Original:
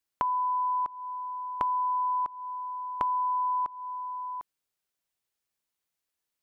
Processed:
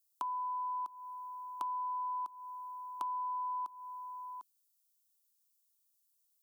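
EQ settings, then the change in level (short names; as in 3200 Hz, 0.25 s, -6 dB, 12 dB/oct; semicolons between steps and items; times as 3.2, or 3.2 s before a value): differentiator; bell 240 Hz +10.5 dB 1.9 oct; fixed phaser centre 530 Hz, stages 6; +6.5 dB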